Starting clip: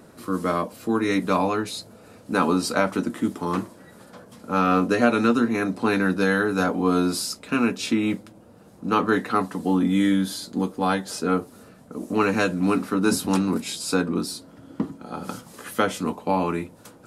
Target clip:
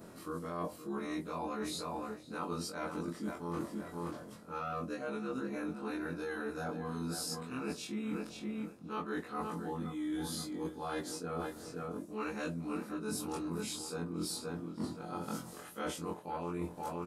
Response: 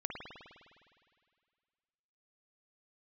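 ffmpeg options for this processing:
-filter_complex "[0:a]afftfilt=real='re':imag='-im':win_size=2048:overlap=0.75,asplit=2[a][b];[b]adelay=523,lowpass=f=4.4k:p=1,volume=-11.5dB,asplit=2[c][d];[d]adelay=523,lowpass=f=4.4k:p=1,volume=0.23,asplit=2[e][f];[f]adelay=523,lowpass=f=4.4k:p=1,volume=0.23[g];[a][c][e][g]amix=inputs=4:normalize=0,areverse,acompressor=threshold=-36dB:ratio=16,areverse,adynamicequalizer=threshold=0.00158:dfrequency=2500:dqfactor=0.74:tfrequency=2500:tqfactor=0.74:attack=5:release=100:ratio=0.375:range=2.5:mode=cutabove:tftype=bell,volume=1.5dB"

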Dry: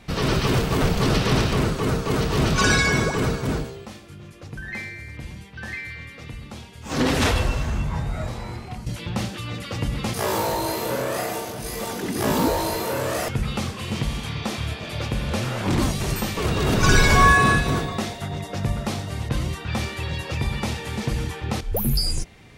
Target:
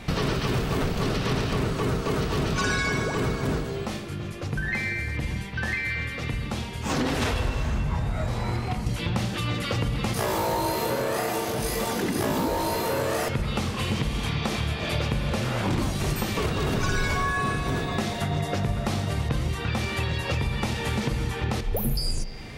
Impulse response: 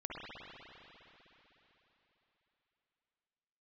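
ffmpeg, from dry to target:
-filter_complex "[0:a]acompressor=threshold=-32dB:ratio=6,asplit=2[a][b];[1:a]atrim=start_sample=2205,asetrate=66150,aresample=44100,lowpass=5.2k[c];[b][c]afir=irnorm=-1:irlink=0,volume=-5.5dB[d];[a][d]amix=inputs=2:normalize=0,volume=6.5dB"

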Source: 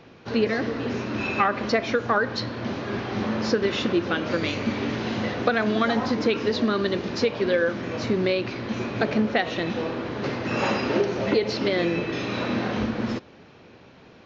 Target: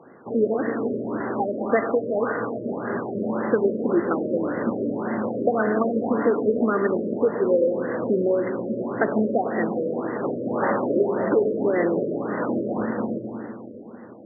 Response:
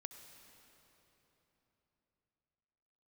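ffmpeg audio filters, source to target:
-filter_complex "[0:a]highpass=220[a];[1:a]atrim=start_sample=2205[b];[a][b]afir=irnorm=-1:irlink=0,afftfilt=real='re*lt(b*sr/1024,620*pow(2100/620,0.5+0.5*sin(2*PI*1.8*pts/sr)))':imag='im*lt(b*sr/1024,620*pow(2100/620,0.5+0.5*sin(2*PI*1.8*pts/sr)))':win_size=1024:overlap=0.75,volume=8dB"

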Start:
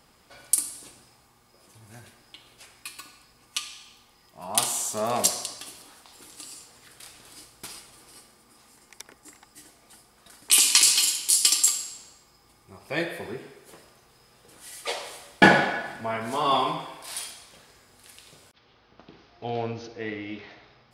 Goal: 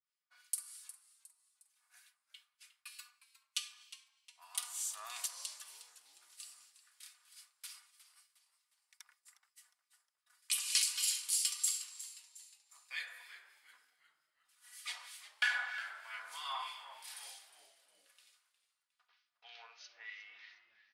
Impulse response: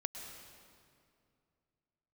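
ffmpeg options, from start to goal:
-filter_complex "[0:a]agate=range=-33dB:threshold=-45dB:ratio=3:detection=peak,highpass=f=1.2k:w=0.5412,highpass=f=1.2k:w=1.3066,aecho=1:1:4.1:0.48,alimiter=limit=-8.5dB:level=0:latency=1:release=355,acrossover=split=1700[a][b];[a]aeval=exprs='val(0)*(1-0.7/2+0.7/2*cos(2*PI*3.2*n/s))':c=same[c];[b]aeval=exprs='val(0)*(1-0.7/2-0.7/2*cos(2*PI*3.2*n/s))':c=same[d];[c][d]amix=inputs=2:normalize=0,asplit=5[e][f][g][h][i];[f]adelay=359,afreqshift=-120,volume=-15dB[j];[g]adelay=718,afreqshift=-240,volume=-22.5dB[k];[h]adelay=1077,afreqshift=-360,volume=-30.1dB[l];[i]adelay=1436,afreqshift=-480,volume=-37.6dB[m];[e][j][k][l][m]amix=inputs=5:normalize=0,volume=-8dB"

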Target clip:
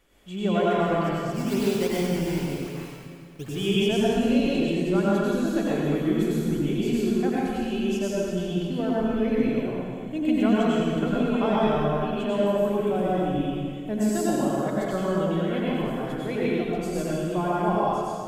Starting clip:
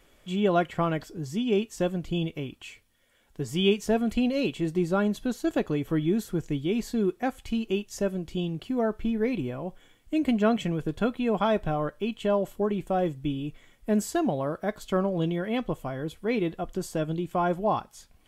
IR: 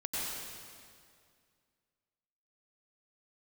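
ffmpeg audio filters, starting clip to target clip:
-filter_complex "[0:a]asettb=1/sr,asplit=3[a][b][c];[a]atrim=end=1.324[d];[b]atrim=start=1.32:end=3.49,asetpts=PTS-STARTPTS,afade=t=in:d=0.004:c=qsin,afade=t=out:st=2.166:d=0.004:c=qsin,acrusher=samples=12:mix=1:aa=0.000001:lfo=1:lforange=12:lforate=2.6[e];[c]atrim=start=3.486[f];[d][e]acrossfade=d=0.004:c1=hsin:c2=qsin[g];[g][f]acrossfade=d=0.004:c1=qsin:c2=hsin[h];[1:a]atrim=start_sample=2205[i];[h][i]afir=irnorm=-1:irlink=0,volume=-2dB"

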